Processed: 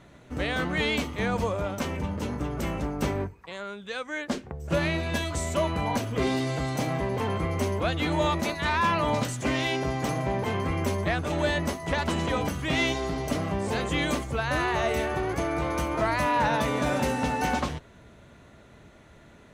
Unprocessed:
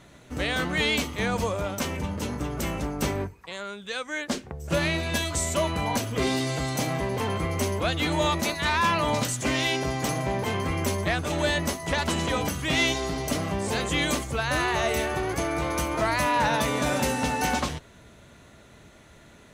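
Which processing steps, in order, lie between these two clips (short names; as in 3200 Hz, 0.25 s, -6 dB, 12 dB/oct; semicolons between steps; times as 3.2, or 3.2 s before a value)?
high shelf 3400 Hz -9 dB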